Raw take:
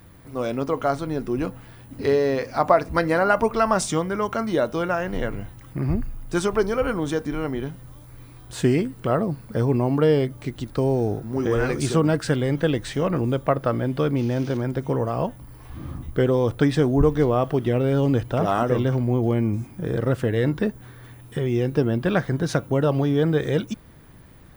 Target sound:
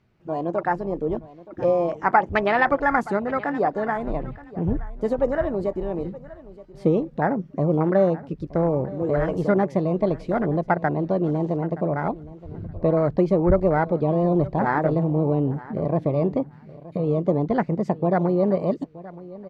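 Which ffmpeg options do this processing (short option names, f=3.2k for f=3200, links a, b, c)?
-filter_complex "[0:a]lowpass=4.3k,afwtdn=0.0631,asetrate=55566,aresample=44100,asplit=2[a][b];[b]aecho=0:1:923|1846:0.119|0.019[c];[a][c]amix=inputs=2:normalize=0"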